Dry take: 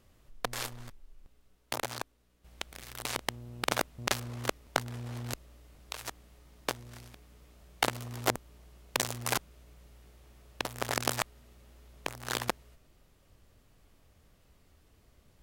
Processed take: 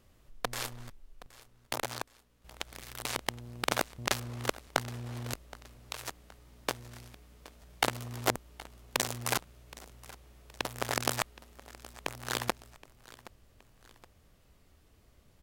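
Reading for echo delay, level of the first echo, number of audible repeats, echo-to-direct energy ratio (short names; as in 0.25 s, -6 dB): 0.771 s, -19.5 dB, 2, -18.5 dB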